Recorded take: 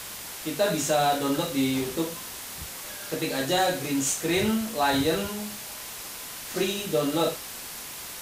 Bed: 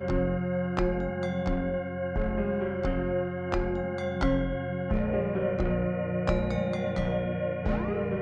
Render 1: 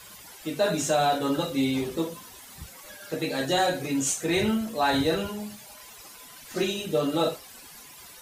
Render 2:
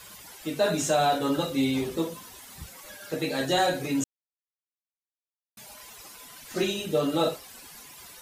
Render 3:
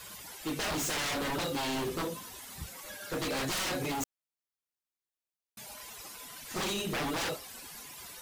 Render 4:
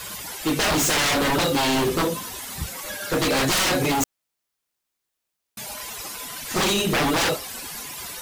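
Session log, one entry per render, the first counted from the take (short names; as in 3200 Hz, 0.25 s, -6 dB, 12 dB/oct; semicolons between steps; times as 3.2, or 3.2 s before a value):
denoiser 13 dB, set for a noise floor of -39 dBFS
4.04–5.57 mute
wavefolder -28 dBFS
gain +12 dB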